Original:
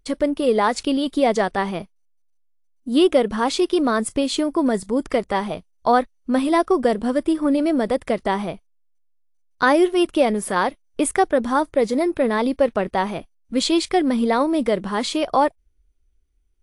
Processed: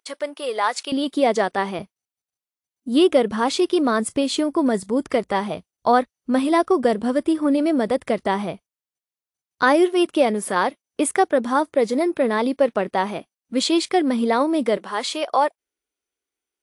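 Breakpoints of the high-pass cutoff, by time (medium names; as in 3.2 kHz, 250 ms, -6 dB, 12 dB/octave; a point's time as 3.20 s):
730 Hz
from 0.92 s 210 Hz
from 1.79 s 84 Hz
from 9.63 s 180 Hz
from 14.77 s 480 Hz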